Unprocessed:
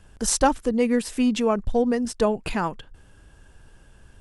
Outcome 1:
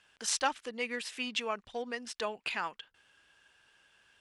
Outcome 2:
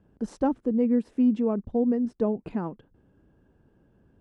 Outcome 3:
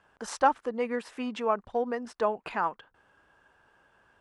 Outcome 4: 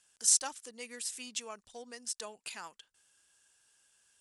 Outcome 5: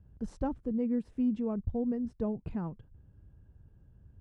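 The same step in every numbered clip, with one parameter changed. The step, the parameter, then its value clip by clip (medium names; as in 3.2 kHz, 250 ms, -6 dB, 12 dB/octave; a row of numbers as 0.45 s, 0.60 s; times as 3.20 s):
band-pass filter, frequency: 2.8 kHz, 260 Hz, 1.1 kHz, 7.8 kHz, 100 Hz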